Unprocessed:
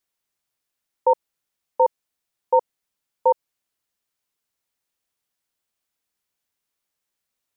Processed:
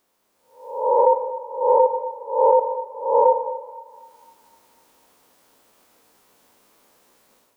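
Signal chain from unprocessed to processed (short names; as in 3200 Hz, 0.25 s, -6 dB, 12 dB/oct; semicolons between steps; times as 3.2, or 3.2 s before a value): spectral swells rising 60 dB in 0.51 s; graphic EQ 250/500/1000 Hz +10/+10/+8 dB; AGC gain up to 11 dB; in parallel at +2.5 dB: limiter -10 dBFS, peak gain reduction 9.5 dB; on the sum: compressor, threshold -13 dBFS, peak gain reduction 10.5 dB; thinning echo 0.25 s, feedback 70%, high-pass 730 Hz, level -17 dB; on a send at -9 dB: reverb RT60 1.2 s, pre-delay 50 ms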